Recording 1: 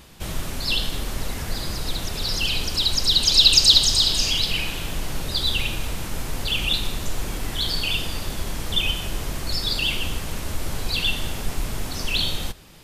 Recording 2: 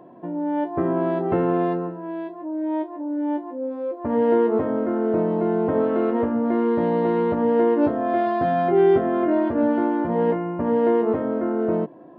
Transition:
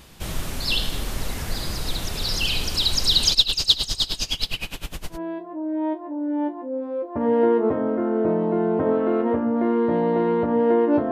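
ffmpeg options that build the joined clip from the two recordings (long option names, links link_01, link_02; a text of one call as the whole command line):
ffmpeg -i cue0.wav -i cue1.wav -filter_complex "[0:a]asplit=3[link_01][link_02][link_03];[link_01]afade=type=out:start_time=3.33:duration=0.02[link_04];[link_02]aeval=exprs='val(0)*pow(10,-22*(0.5-0.5*cos(2*PI*9.7*n/s))/20)':channel_layout=same,afade=type=in:start_time=3.33:duration=0.02,afade=type=out:start_time=5.19:duration=0.02[link_05];[link_03]afade=type=in:start_time=5.19:duration=0.02[link_06];[link_04][link_05][link_06]amix=inputs=3:normalize=0,apad=whole_dur=11.11,atrim=end=11.11,atrim=end=5.19,asetpts=PTS-STARTPTS[link_07];[1:a]atrim=start=1.98:end=8,asetpts=PTS-STARTPTS[link_08];[link_07][link_08]acrossfade=duration=0.1:curve1=tri:curve2=tri" out.wav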